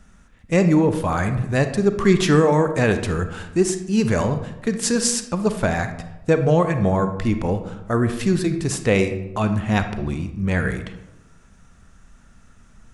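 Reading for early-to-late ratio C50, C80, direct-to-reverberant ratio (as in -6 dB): 9.5 dB, 12.0 dB, 8.0 dB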